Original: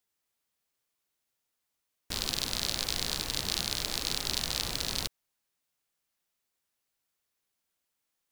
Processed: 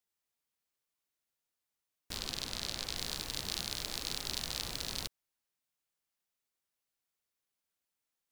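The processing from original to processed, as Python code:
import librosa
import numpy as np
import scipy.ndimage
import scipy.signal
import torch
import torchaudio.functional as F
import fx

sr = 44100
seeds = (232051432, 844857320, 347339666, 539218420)

y = fx.high_shelf(x, sr, hz=9800.0, db=-6.5, at=(2.17, 2.97))
y = F.gain(torch.from_numpy(y), -6.0).numpy()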